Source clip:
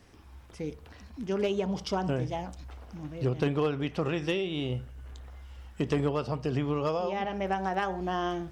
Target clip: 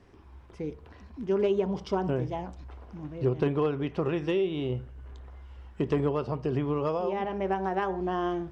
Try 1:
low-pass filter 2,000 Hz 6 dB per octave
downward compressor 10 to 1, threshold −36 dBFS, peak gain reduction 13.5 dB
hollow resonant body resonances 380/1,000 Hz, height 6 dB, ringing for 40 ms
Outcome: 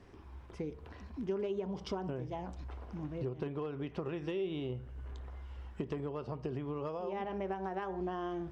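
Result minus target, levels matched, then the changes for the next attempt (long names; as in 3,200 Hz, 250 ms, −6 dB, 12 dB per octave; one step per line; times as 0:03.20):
downward compressor: peak gain reduction +13.5 dB
remove: downward compressor 10 to 1, threshold −36 dBFS, peak gain reduction 13.5 dB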